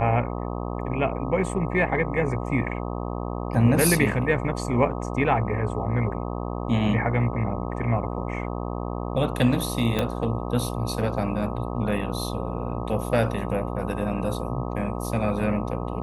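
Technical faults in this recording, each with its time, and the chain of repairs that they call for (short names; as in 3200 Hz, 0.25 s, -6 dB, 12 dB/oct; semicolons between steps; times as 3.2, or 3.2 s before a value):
buzz 60 Hz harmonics 21 -30 dBFS
9.99 pop -10 dBFS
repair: de-click; de-hum 60 Hz, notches 21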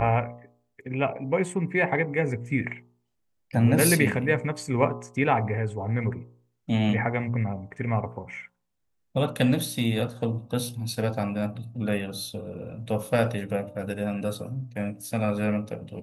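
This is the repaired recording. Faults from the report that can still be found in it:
9.99 pop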